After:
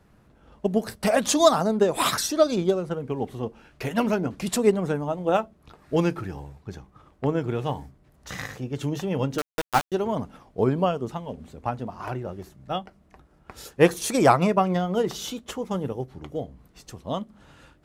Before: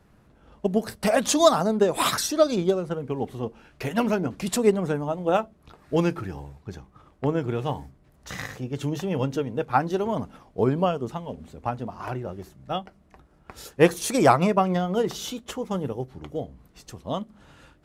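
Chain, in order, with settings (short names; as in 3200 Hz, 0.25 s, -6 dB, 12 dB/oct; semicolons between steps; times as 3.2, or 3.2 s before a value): 9.38–9.92 sample gate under -20.5 dBFS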